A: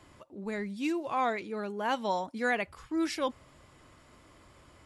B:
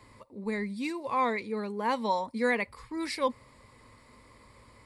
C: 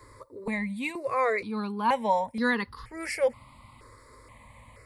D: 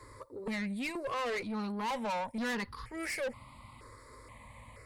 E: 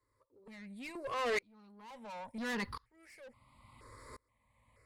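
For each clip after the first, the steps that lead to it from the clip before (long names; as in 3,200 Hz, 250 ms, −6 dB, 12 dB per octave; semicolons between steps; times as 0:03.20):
EQ curve with evenly spaced ripples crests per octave 0.94, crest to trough 10 dB
step-sequenced phaser 2.1 Hz 760–2,300 Hz; level +6.5 dB
tube saturation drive 32 dB, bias 0.25
tremolo with a ramp in dB swelling 0.72 Hz, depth 33 dB; level +3.5 dB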